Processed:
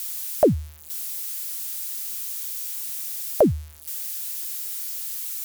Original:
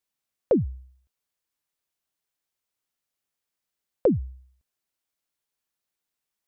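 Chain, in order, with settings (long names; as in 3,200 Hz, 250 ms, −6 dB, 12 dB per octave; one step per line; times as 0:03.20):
spike at every zero crossing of −29.5 dBFS
speed change +19%
level +4.5 dB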